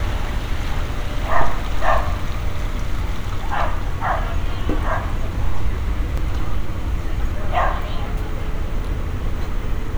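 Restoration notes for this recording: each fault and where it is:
6.17 s: dropout 4.8 ms

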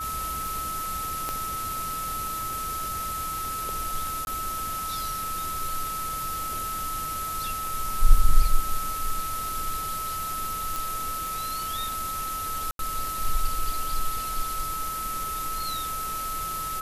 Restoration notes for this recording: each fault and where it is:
tick 33 1/3 rpm
whine 1.3 kHz -30 dBFS
1.29 s: pop -15 dBFS
4.25–4.27 s: dropout 21 ms
10.76 s: pop
12.71–12.79 s: dropout 82 ms

